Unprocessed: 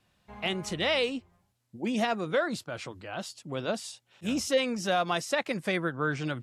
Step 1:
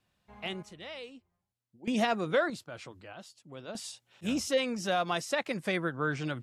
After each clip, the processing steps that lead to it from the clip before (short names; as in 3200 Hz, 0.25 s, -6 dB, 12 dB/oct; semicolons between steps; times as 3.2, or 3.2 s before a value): random-step tremolo 1.6 Hz, depth 85%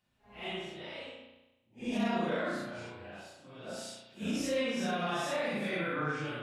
phase scrambler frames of 0.2 s; limiter -24 dBFS, peak gain reduction 11 dB; spring tank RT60 1 s, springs 34 ms, chirp 30 ms, DRR -1.5 dB; gain -3.5 dB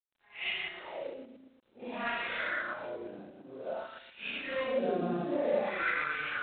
reverse delay 0.114 s, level -3 dB; wah 0.53 Hz 270–2400 Hz, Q 2.5; gain +9 dB; G.726 24 kbps 8000 Hz